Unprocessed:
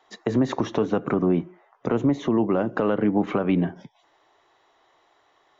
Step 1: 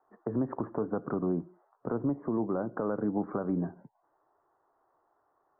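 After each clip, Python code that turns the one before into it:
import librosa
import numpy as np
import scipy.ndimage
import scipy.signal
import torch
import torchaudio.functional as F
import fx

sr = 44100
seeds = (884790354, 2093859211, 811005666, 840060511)

y = scipy.signal.sosfilt(scipy.signal.butter(8, 1500.0, 'lowpass', fs=sr, output='sos'), x)
y = y * librosa.db_to_amplitude(-9.0)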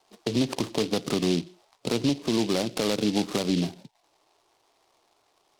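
y = fx.noise_mod_delay(x, sr, seeds[0], noise_hz=3600.0, depth_ms=0.13)
y = y * librosa.db_to_amplitude(5.5)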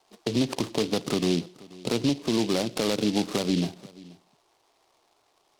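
y = x + 10.0 ** (-21.5 / 20.0) * np.pad(x, (int(482 * sr / 1000.0), 0))[:len(x)]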